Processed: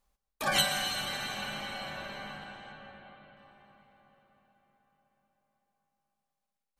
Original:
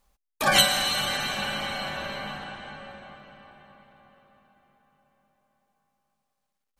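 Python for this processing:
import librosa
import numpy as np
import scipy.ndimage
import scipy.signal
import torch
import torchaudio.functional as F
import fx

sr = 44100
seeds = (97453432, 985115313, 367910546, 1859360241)

y = fx.steep_lowpass(x, sr, hz=4300.0, slope=48, at=(2.72, 3.37))
y = fx.rev_plate(y, sr, seeds[0], rt60_s=1.2, hf_ratio=0.85, predelay_ms=105, drr_db=10.5)
y = F.gain(torch.from_numpy(y), -8.0).numpy()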